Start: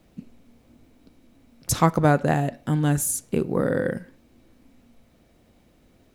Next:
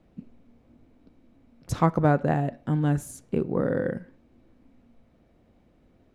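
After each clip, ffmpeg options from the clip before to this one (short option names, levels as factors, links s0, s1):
-af "lowpass=f=1500:p=1,volume=0.794"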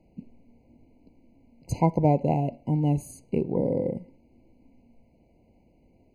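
-af "afftfilt=real='re*eq(mod(floor(b*sr/1024/1000),2),0)':imag='im*eq(mod(floor(b*sr/1024/1000),2),0)':win_size=1024:overlap=0.75"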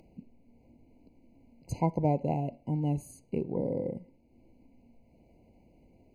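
-af "acompressor=mode=upward:threshold=0.00501:ratio=2.5,volume=0.501"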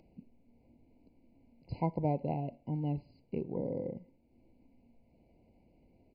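-af "aresample=11025,aresample=44100,volume=0.596"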